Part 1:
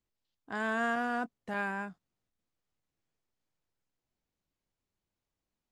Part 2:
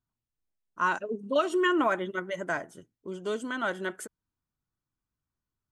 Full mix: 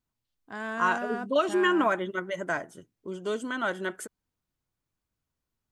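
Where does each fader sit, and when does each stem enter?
−2.0, +1.0 decibels; 0.00, 0.00 seconds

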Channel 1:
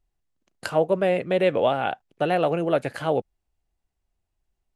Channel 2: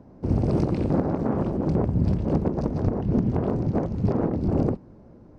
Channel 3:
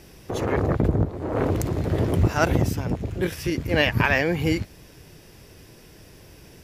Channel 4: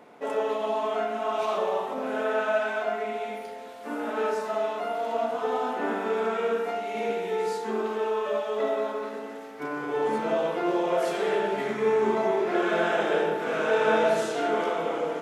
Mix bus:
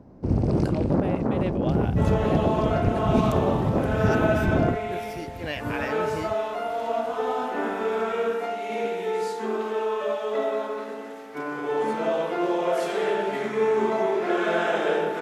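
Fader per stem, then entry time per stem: −12.0, 0.0, −11.5, +1.0 decibels; 0.00, 0.00, 1.70, 1.75 seconds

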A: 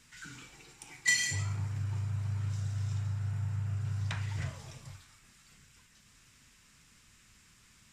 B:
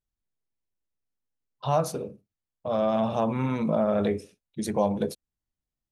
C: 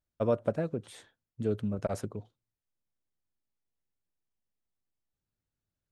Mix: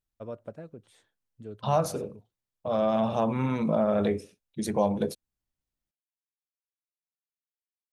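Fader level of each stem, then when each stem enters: muted, −0.5 dB, −11.5 dB; muted, 0.00 s, 0.00 s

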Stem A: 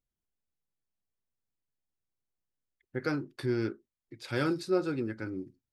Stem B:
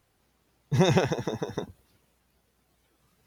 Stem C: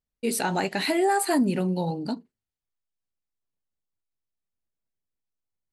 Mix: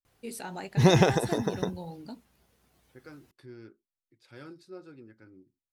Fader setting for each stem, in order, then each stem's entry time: −17.0, +2.0, −13.0 decibels; 0.00, 0.05, 0.00 seconds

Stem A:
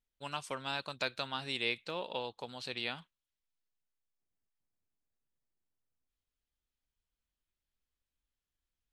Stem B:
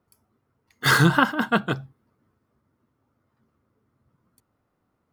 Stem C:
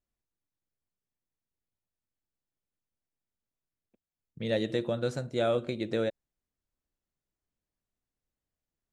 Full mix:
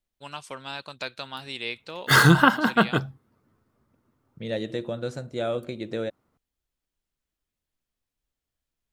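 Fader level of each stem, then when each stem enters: +1.5, +1.5, −0.5 decibels; 0.00, 1.25, 0.00 seconds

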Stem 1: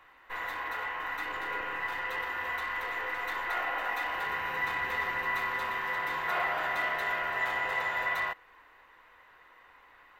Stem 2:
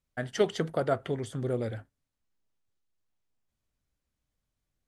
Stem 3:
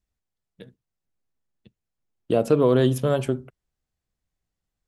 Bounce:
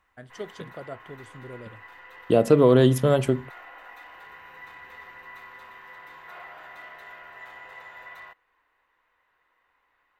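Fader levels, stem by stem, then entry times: −13.0, −11.0, +2.0 decibels; 0.00, 0.00, 0.00 seconds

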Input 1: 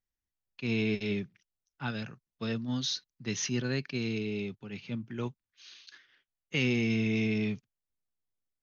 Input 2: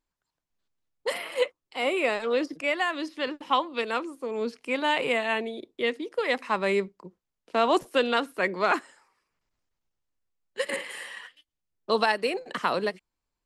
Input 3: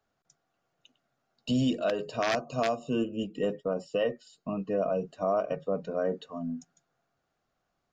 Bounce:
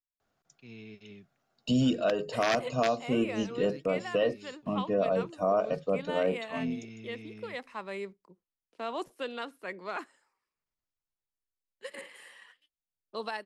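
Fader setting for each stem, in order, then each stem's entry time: −18.0, −13.0, +1.0 decibels; 0.00, 1.25, 0.20 seconds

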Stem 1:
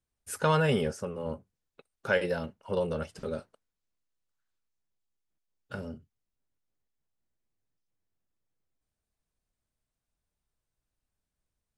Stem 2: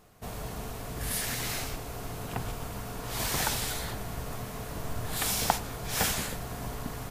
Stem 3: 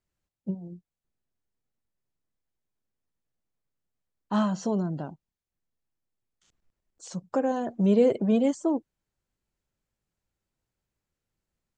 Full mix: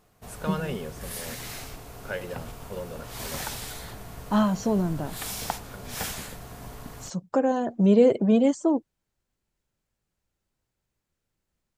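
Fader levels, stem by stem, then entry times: −7.0, −4.5, +3.0 decibels; 0.00, 0.00, 0.00 seconds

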